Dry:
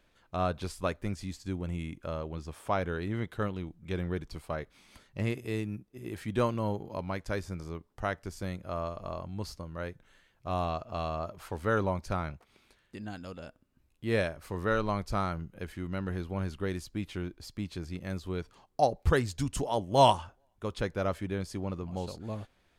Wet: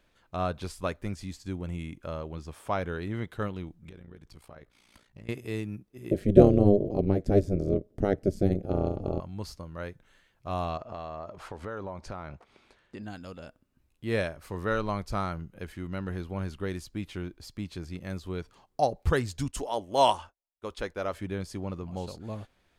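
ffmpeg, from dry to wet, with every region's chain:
-filter_complex "[0:a]asettb=1/sr,asplit=3[a][b][c];[a]atrim=end=3.894[d];[b]atrim=start=3.89:end=5.29,asetpts=PTS-STARTPTS,afade=t=in:d=0.004:c=qsin,afade=t=out:st=1.396:d=0.004:c=qsin,acompressor=threshold=-42dB:ratio=5:attack=3.2:release=140:knee=1:detection=peak,tremolo=f=58:d=0.788[e];[c]atrim=start=5.286[f];[d][e]acrossfade=d=0.004:c1=hsin:c2=qsin[g];[g][f]acrossfade=d=0.004:c1=qsin:c2=hsin,asettb=1/sr,asplit=3[h][i][j];[h]atrim=end=6.114[k];[i]atrim=start=6.11:end=9.2,asetpts=PTS-STARTPTS,afade=t=in:d=0.004:c=qsin,afade=t=out:st=3.086:d=0.004:c=qsin,lowshelf=f=600:t=q:w=3:g=13.5,tremolo=f=200:d=0.919[l];[j]atrim=start=9.196[m];[k][l]acrossfade=d=0.004:c1=hsin:c2=qsin[n];[n][m]acrossfade=d=0.004:c1=qsin:c2=hsin,asettb=1/sr,asplit=3[o][p][q];[o]atrim=end=10.774[r];[p]atrim=start=10.77:end=13.03,asetpts=PTS-STARTPTS,afade=t=in:d=0.004:c=qsin,afade=t=out:st=2.256:d=0.004:c=qsin,lowpass=8k,equalizer=f=690:w=0.44:g=6.5,acompressor=threshold=-36dB:ratio=4:attack=3.2:release=140:knee=1:detection=peak[s];[q]atrim=start=13.026[t];[r][s]acrossfade=d=0.004:c1=hsin:c2=qsin[u];[u][t]acrossfade=d=0.004:c1=qsin:c2=hsin,asettb=1/sr,asplit=3[v][w][x];[v]atrim=end=19.484[y];[w]atrim=start=19.48:end=21.14,asetpts=PTS-STARTPTS,afade=t=in:d=0.004:c=qsin,afade=t=out:st=1.656:d=0.004:c=qsin,agate=range=-33dB:threshold=-44dB:ratio=3:release=100:detection=peak,equalizer=f=130:w=1.1:g=-13.5[z];[x]atrim=start=21.136[aa];[y][z]acrossfade=d=0.004:c1=hsin:c2=qsin[ab];[ab][aa]acrossfade=d=0.004:c1=qsin:c2=hsin"

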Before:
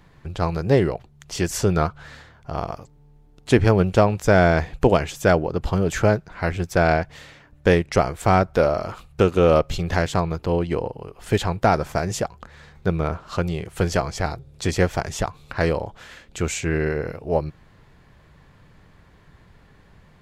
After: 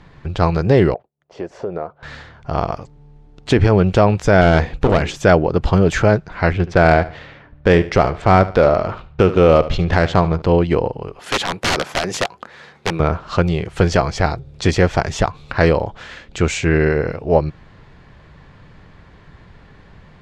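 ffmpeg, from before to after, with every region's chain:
-filter_complex "[0:a]asettb=1/sr,asplit=3[a][b][c];[a]atrim=end=0.944[d];[b]atrim=start=0.94:end=2.03,asetpts=PTS-STARTPTS,afade=t=in:d=0.004:c=qsin,afade=t=out:st=1.086:d=0.004:c=qsin,agate=range=-33dB:threshold=-40dB:ratio=3:release=100:detection=peak,bandpass=f=560:t=q:w=1.9,acompressor=threshold=-29dB:ratio=3:attack=3.2:release=140:knee=1:detection=peak[e];[c]atrim=start=2.026[f];[d][e]acrossfade=d=0.004:c1=hsin:c2=qsin[g];[g][f]acrossfade=d=0.004:c1=qsin:c2=hsin,asettb=1/sr,asplit=3[h][i][j];[h]atrim=end=4.414[k];[i]atrim=start=4.41:end=5.17,asetpts=PTS-STARTPTS,afade=t=in:d=0.004:c=qsin,afade=t=out:st=0.756:d=0.004:c=qsin,bandreject=f=60:t=h:w=6,bandreject=f=120:t=h:w=6,bandreject=f=180:t=h:w=6,bandreject=f=240:t=h:w=6,bandreject=f=300:t=h:w=6,bandreject=f=360:t=h:w=6,bandreject=f=420:t=h:w=6,bandreject=f=480:t=h:w=6,bandreject=f=540:t=h:w=6,aeval=exprs='clip(val(0),-1,0.0944)':c=same[l];[j]atrim=start=5.166[m];[k][l]acrossfade=d=0.004:c1=hsin:c2=qsin[n];[n][m]acrossfade=d=0.004:c1=qsin:c2=hsin,asettb=1/sr,asplit=3[o][p][q];[o]atrim=end=6.534[r];[p]atrim=start=6.53:end=10.42,asetpts=PTS-STARTPTS,afade=t=in:d=0.004:c=qsin,afade=t=out:st=3.886:d=0.004:c=qsin,adynamicsmooth=sensitivity=3.5:basefreq=3.1k,aecho=1:1:73|146|219:0.141|0.0424|0.0127,atrim=end_sample=171549[s];[q]atrim=start=10.416[t];[r][s]acrossfade=d=0.004:c1=hsin:c2=qsin[u];[u][t]acrossfade=d=0.004:c1=qsin:c2=hsin,asettb=1/sr,asplit=3[v][w][x];[v]atrim=end=11.194[y];[w]atrim=start=11.19:end=13,asetpts=PTS-STARTPTS,afade=t=in:d=0.004:c=qsin,afade=t=out:st=1.806:d=0.004:c=qsin,highpass=250,equalizer=f=11k:t=o:w=0.33:g=11,aeval=exprs='(mod(7.94*val(0)+1,2)-1)/7.94':c=same[z];[x]atrim=start=12.996[aa];[y][z]acrossfade=d=0.004:c1=hsin:c2=qsin[ab];[ab][aa]acrossfade=d=0.004:c1=qsin:c2=hsin,lowpass=5.3k,alimiter=level_in=8.5dB:limit=-1dB:release=50:level=0:latency=1,volume=-1dB"

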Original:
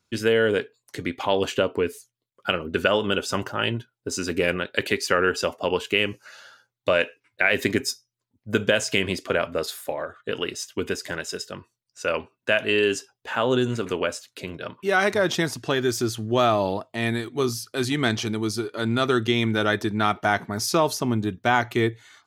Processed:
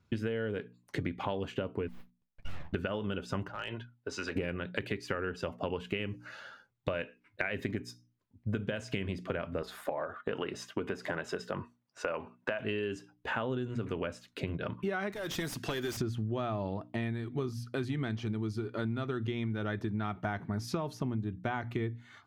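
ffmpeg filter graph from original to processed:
-filter_complex "[0:a]asettb=1/sr,asplit=3[a][b][c];[a]atrim=end=1.884[d];[b]atrim=start=1.88:end=2.73,asetpts=PTS-STARTPTS,afade=t=in:d=0.004:c=qsin,afade=t=out:st=0.846:d=0.004:c=qsin,highpass=f=620:w=0.5412,highpass=f=620:w=1.3066,aeval=exprs='(tanh(39.8*val(0)+0.25)-tanh(0.25))/39.8':c=same,aeval=exprs='abs(val(0))':c=same[e];[c]atrim=start=2.726[f];[d][e]acrossfade=d=0.004:c1=hsin:c2=qsin[g];[g][f]acrossfade=d=0.004:c1=qsin:c2=hsin,asettb=1/sr,asplit=3[h][i][j];[h]atrim=end=3.484[k];[i]atrim=start=3.48:end=4.36,asetpts=PTS-STARTPTS,afade=t=in:d=0.004:c=qsin,afade=t=out:st=0.876:d=0.004:c=qsin,acrossover=split=510 6000:gain=0.1 1 0.2[l][m][n];[l][m][n]amix=inputs=3:normalize=0,acompressor=threshold=-28dB:ratio=12:attack=3.2:release=140:knee=1:detection=peak,volume=26dB,asoftclip=hard,volume=-26dB[o];[j]atrim=start=4.356[p];[k][o]acrossfade=d=0.004:c1=hsin:c2=qsin[q];[q][p]acrossfade=d=0.004:c1=qsin:c2=hsin,asettb=1/sr,asplit=3[r][s][t];[r]atrim=end=9.624[u];[s]atrim=start=9.62:end=12.6,asetpts=PTS-STARTPTS,afade=t=in:d=0.004:c=qsin,afade=t=out:st=2.976:d=0.004:c=qsin,highpass=120,equalizer=f=880:t=o:w=2.2:g=10,acompressor=threshold=-33dB:ratio=1.5:attack=3.2:release=140:knee=1:detection=peak[v];[t]atrim=start=12.596[w];[u][v]acrossfade=d=0.004:c1=hsin:c2=qsin[x];[x][w]acrossfade=d=0.004:c1=qsin:c2=hsin,asettb=1/sr,asplit=3[y][z][aa];[y]atrim=end=15.124[ab];[z]atrim=start=15.12:end=15.97,asetpts=PTS-STARTPTS,afade=t=in:d=0.004:c=qsin,afade=t=out:st=0.846:d=0.004:c=qsin,aemphasis=mode=production:type=riaa,acrossover=split=550|4300[ac][ad][ae];[ac]acompressor=threshold=-30dB:ratio=4[af];[ad]acompressor=threshold=-29dB:ratio=4[ag];[ae]acompressor=threshold=-25dB:ratio=4[ah];[af][ag][ah]amix=inputs=3:normalize=0,asoftclip=type=hard:threshold=-25dB[ai];[aa]atrim=start=15.966[aj];[ab][ai]acrossfade=d=0.004:c1=hsin:c2=qsin[ak];[ak][aj]acrossfade=d=0.004:c1=qsin:c2=hsin,bass=f=250:g=11,treble=f=4k:g=-13,bandreject=f=60:t=h:w=6,bandreject=f=120:t=h:w=6,bandreject=f=180:t=h:w=6,bandreject=f=240:t=h:w=6,bandreject=f=300:t=h:w=6,acompressor=threshold=-31dB:ratio=10"

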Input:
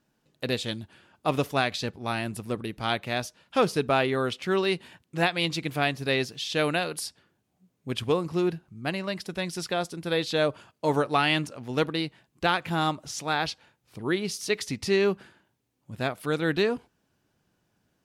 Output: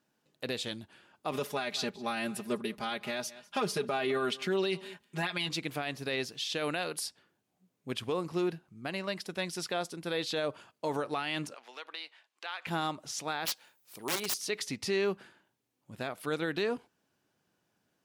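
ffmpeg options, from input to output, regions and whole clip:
-filter_complex "[0:a]asettb=1/sr,asplit=3[a][b][c];[a]atrim=end=1.324[d];[b]atrim=start=1.32:end=5.49,asetpts=PTS-STARTPTS,afade=t=in:d=0.004:c=qsin,afade=t=out:st=4.166:d=0.004:c=qsin,aecho=1:1:4.9:0.92,atrim=end_sample=183897,aecho=1:1:199:0.0708,atrim=end_sample=183897[e];[c]atrim=start=5.486[f];[d][e]acrossfade=d=0.004:c1=hsin:c2=qsin[g];[g][f]acrossfade=d=0.004:c1=qsin:c2=hsin,asettb=1/sr,asplit=3[h][i][j];[h]atrim=end=11.544[k];[i]atrim=start=11.54:end=12.67,asetpts=PTS-STARTPTS,afade=t=in:d=0.004:c=qsin,afade=t=out:st=1.126:d=0.004:c=qsin,acompressor=threshold=-30dB:ratio=12:attack=3.2:release=140:knee=1:detection=peak,highpass=670,lowpass=3.4k,aemphasis=mode=production:type=riaa[l];[j]atrim=start=12.666[m];[k][l]acrossfade=d=0.004:c1=hsin:c2=qsin[n];[n][m]acrossfade=d=0.004:c1=qsin:c2=hsin,asettb=1/sr,asplit=3[o][p][q];[o]atrim=end=13.454[r];[p]atrim=start=13.45:end=14.34,asetpts=PTS-STARTPTS,afade=t=in:d=0.004:c=qsin,afade=t=out:st=0.886:d=0.004:c=qsin,aemphasis=mode=production:type=bsi,aeval=exprs='(mod(12.6*val(0)+1,2)-1)/12.6':c=same[s];[q]atrim=start=14.336[t];[r][s]acrossfade=d=0.004:c1=hsin:c2=qsin[u];[u][t]acrossfade=d=0.004:c1=qsin:c2=hsin,highpass=f=240:p=1,alimiter=limit=-20dB:level=0:latency=1:release=59,volume=-2.5dB"

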